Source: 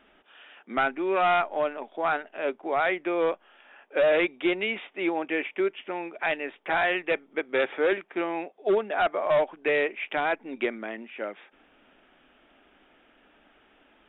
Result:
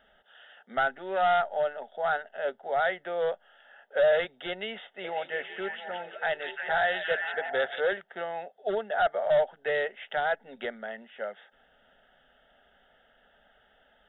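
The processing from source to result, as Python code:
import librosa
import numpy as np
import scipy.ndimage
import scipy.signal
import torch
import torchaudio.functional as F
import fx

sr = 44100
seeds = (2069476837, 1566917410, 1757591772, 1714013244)

y = fx.fixed_phaser(x, sr, hz=1600.0, stages=8)
y = fx.echo_stepped(y, sr, ms=174, hz=3200.0, octaves=-0.7, feedback_pct=70, wet_db=-1, at=(5.03, 7.79), fade=0.02)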